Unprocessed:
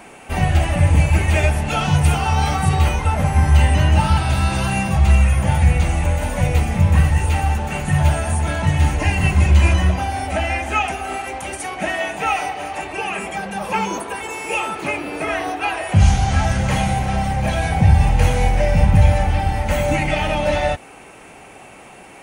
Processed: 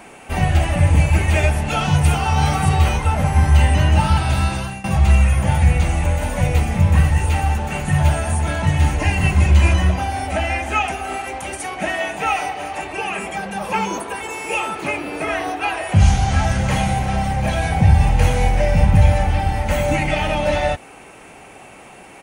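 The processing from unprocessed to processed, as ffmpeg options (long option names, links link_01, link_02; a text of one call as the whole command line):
ffmpeg -i in.wav -filter_complex "[0:a]asplit=2[link_01][link_02];[link_02]afade=type=in:start_time=1.86:duration=0.01,afade=type=out:start_time=2.48:duration=0.01,aecho=0:1:490|980|1470|1960:0.334965|0.133986|0.0535945|0.0214378[link_03];[link_01][link_03]amix=inputs=2:normalize=0,asplit=2[link_04][link_05];[link_04]atrim=end=4.84,asetpts=PTS-STARTPTS,afade=type=out:start_time=4.42:duration=0.42:silence=0.112202[link_06];[link_05]atrim=start=4.84,asetpts=PTS-STARTPTS,afade=type=in:duration=0.004:curve=hsin:silence=0.112202[link_07];[link_06][link_07]concat=n=2:v=0:a=1" out.wav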